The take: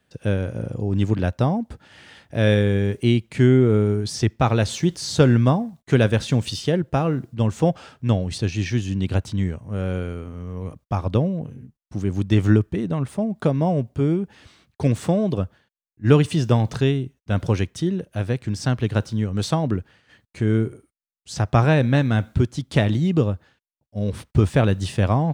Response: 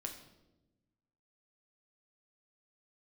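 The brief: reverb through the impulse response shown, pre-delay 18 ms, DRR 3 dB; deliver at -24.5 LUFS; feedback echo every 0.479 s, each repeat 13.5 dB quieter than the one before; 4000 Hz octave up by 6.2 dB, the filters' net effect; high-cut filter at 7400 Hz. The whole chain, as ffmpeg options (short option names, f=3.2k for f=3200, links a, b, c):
-filter_complex "[0:a]lowpass=7.4k,equalizer=f=4k:t=o:g=8,aecho=1:1:479|958:0.211|0.0444,asplit=2[a][b];[1:a]atrim=start_sample=2205,adelay=18[c];[b][c]afir=irnorm=-1:irlink=0,volume=-1dB[d];[a][d]amix=inputs=2:normalize=0,volume=-5.5dB"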